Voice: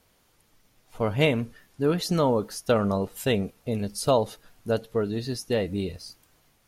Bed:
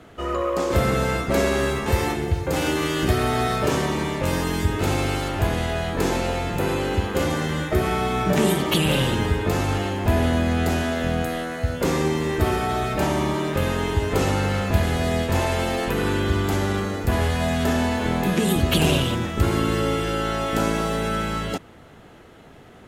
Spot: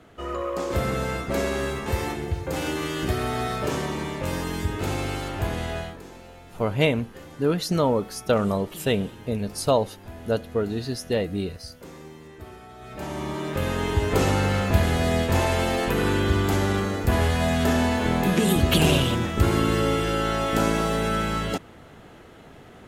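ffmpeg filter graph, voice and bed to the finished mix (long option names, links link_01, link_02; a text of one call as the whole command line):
ffmpeg -i stem1.wav -i stem2.wav -filter_complex "[0:a]adelay=5600,volume=1dB[link_01];[1:a]volume=16dB,afade=type=out:start_time=5.78:duration=0.22:silence=0.158489,afade=type=in:start_time=12.78:duration=1.32:silence=0.0891251[link_02];[link_01][link_02]amix=inputs=2:normalize=0" out.wav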